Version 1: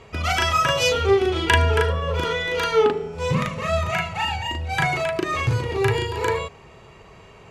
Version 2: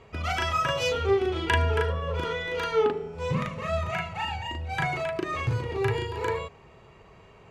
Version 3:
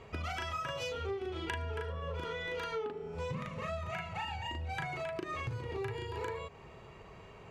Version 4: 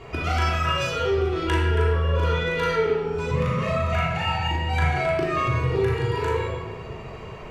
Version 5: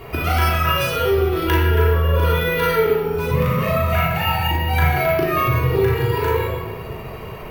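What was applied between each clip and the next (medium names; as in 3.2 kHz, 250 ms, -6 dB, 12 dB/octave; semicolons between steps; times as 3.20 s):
treble shelf 3.8 kHz -7 dB; trim -5.5 dB
compression 6:1, threshold -36 dBFS, peak gain reduction 16 dB
simulated room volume 1100 m³, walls mixed, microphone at 3.2 m; trim +7 dB
careless resampling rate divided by 3×, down filtered, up hold; trim +5 dB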